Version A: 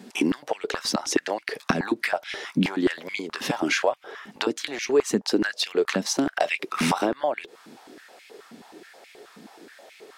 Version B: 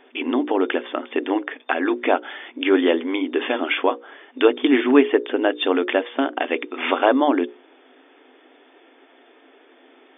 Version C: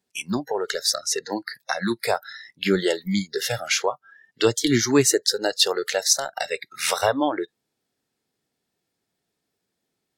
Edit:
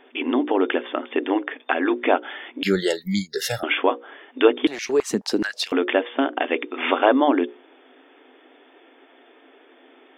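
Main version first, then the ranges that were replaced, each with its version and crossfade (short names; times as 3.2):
B
2.63–3.63 from C
4.67–5.72 from A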